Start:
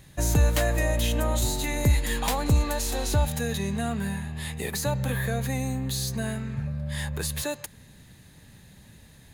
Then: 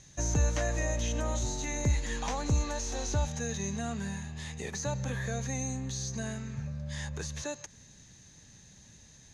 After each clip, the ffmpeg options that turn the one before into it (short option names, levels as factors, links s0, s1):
-filter_complex "[0:a]acrossover=split=2600[s0][s1];[s1]acompressor=threshold=0.00891:ratio=4:attack=1:release=60[s2];[s0][s2]amix=inputs=2:normalize=0,lowpass=f=6200:t=q:w=9.4,volume=0.473"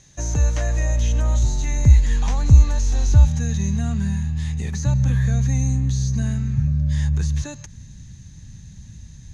-af "asubboost=boost=10:cutoff=150,volume=1.41"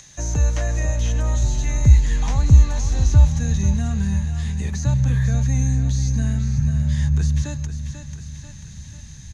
-filter_complex "[0:a]aecho=1:1:491|982|1473|1964|2455:0.299|0.134|0.0605|0.0272|0.0122,acrossover=split=440|620[s0][s1][s2];[s2]acompressor=mode=upward:threshold=0.0112:ratio=2.5[s3];[s0][s1][s3]amix=inputs=3:normalize=0"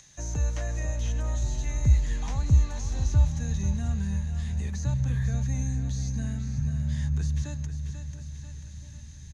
-filter_complex "[0:a]asplit=2[s0][s1];[s1]adelay=683,lowpass=f=1100:p=1,volume=0.211,asplit=2[s2][s3];[s3]adelay=683,lowpass=f=1100:p=1,volume=0.55,asplit=2[s4][s5];[s5]adelay=683,lowpass=f=1100:p=1,volume=0.55,asplit=2[s6][s7];[s7]adelay=683,lowpass=f=1100:p=1,volume=0.55,asplit=2[s8][s9];[s9]adelay=683,lowpass=f=1100:p=1,volume=0.55,asplit=2[s10][s11];[s11]adelay=683,lowpass=f=1100:p=1,volume=0.55[s12];[s0][s2][s4][s6][s8][s10][s12]amix=inputs=7:normalize=0,volume=0.376"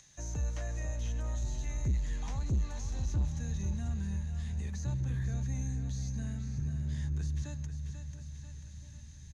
-af "asoftclip=type=tanh:threshold=0.106,volume=0.531"